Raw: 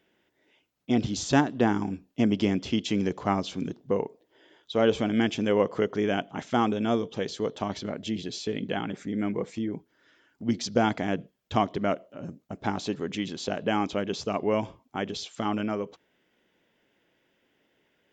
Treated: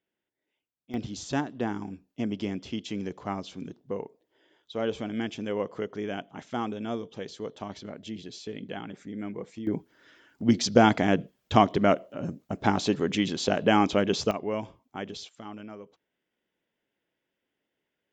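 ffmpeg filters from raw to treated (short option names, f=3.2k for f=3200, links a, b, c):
-af "asetnsamples=n=441:p=0,asendcmd='0.94 volume volume -7dB;9.67 volume volume 5dB;14.31 volume volume -5dB;15.29 volume volume -13dB',volume=-17.5dB"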